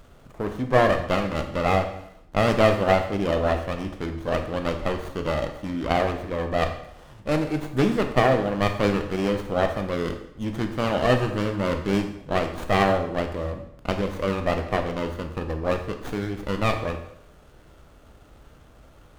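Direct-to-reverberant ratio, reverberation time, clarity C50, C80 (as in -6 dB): 5.5 dB, 0.75 s, 8.5 dB, 11.0 dB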